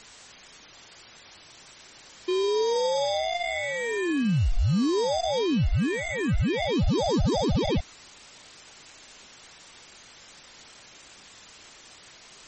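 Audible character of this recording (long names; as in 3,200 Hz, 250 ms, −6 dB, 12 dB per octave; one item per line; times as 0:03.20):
aliases and images of a low sample rate 1,400 Hz, jitter 0%
phaser sweep stages 4, 0.45 Hz, lowest notch 800–2,100 Hz
a quantiser's noise floor 8 bits, dither triangular
MP3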